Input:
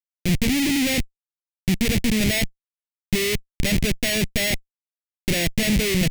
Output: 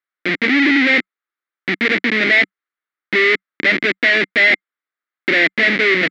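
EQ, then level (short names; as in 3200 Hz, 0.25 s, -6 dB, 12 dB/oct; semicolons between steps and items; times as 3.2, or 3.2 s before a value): elliptic band-pass 300–3900 Hz, stop band 80 dB; low shelf 410 Hz +6.5 dB; band shelf 1600 Hz +13 dB 1.1 oct; +4.5 dB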